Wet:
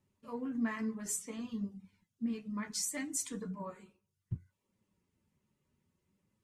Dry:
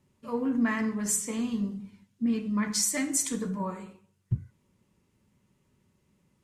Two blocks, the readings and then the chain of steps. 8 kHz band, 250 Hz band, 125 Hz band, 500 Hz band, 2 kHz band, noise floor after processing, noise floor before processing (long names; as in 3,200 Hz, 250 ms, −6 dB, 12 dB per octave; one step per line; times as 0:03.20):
−9.5 dB, −9.5 dB, −10.0 dB, −9.5 dB, −9.5 dB, −85 dBFS, −72 dBFS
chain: reverb reduction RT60 0.51 s
flanger 0.63 Hz, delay 9.2 ms, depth 5 ms, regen +55%
level −4.5 dB